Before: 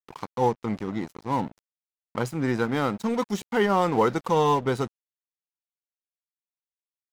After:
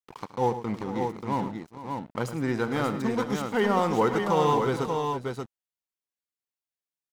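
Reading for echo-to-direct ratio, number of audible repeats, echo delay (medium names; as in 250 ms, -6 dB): -3.5 dB, 4, 73 ms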